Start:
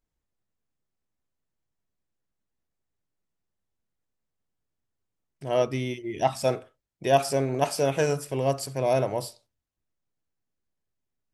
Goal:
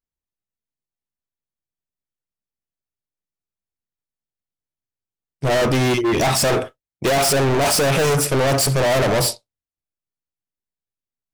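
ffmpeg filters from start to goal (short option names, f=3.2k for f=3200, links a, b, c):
-af "agate=range=-33dB:threshold=-36dB:ratio=3:detection=peak,apsyclip=21dB,volume=17.5dB,asoftclip=hard,volume=-17.5dB,volume=1.5dB"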